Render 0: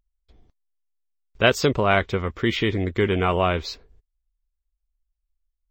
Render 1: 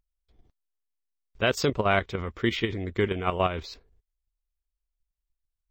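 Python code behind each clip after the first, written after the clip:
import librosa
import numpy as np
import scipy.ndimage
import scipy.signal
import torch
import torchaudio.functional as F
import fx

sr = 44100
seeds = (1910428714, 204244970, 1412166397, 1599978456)

y = fx.level_steps(x, sr, step_db=10)
y = F.gain(torch.from_numpy(y), -1.5).numpy()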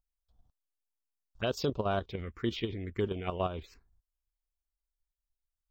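y = fx.env_phaser(x, sr, low_hz=360.0, high_hz=2100.0, full_db=-21.5)
y = F.gain(torch.from_numpy(y), -5.5).numpy()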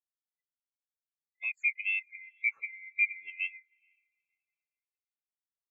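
y = fx.band_swap(x, sr, width_hz=2000)
y = fx.echo_diffused(y, sr, ms=455, feedback_pct=52, wet_db=-13)
y = fx.spectral_expand(y, sr, expansion=2.5)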